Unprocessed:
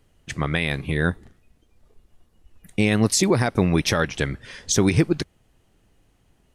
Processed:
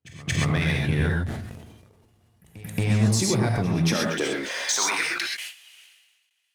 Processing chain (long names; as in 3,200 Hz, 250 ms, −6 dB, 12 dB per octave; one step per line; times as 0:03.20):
noise gate with hold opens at −47 dBFS
high-pass filter sweep 98 Hz → 2,600 Hz, 0:03.53–0:05.34
downward compressor 6 to 1, threshold −31 dBFS, peak gain reduction 19.5 dB
leveller curve on the samples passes 2
echo ahead of the sound 227 ms −19 dB
reverb whose tail is shaped and stops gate 150 ms rising, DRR −0.5 dB
level that may fall only so fast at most 44 dB per second